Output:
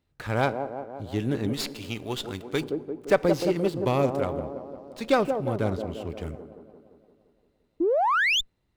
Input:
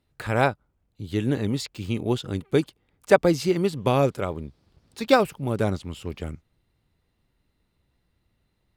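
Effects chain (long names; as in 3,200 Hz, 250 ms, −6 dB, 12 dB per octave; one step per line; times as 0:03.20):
0:05.09–0:06.06: high-shelf EQ 7,600 Hz −7 dB
on a send: delay with a band-pass on its return 173 ms, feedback 61%, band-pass 450 Hz, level −6 dB
on the sum: feedback delay network reverb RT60 1.4 s, low-frequency decay 1.1×, high-frequency decay 0.75×, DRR 19 dB
0:07.80–0:08.41: sound drawn into the spectrogram rise 310–3,700 Hz −19 dBFS
in parallel at −4 dB: soft clipping −13 dBFS, distortion −15 dB
0:01.53–0:02.61: on the sum: tilt shelving filter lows −6.5 dB, about 890 Hz
windowed peak hold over 3 samples
level −7 dB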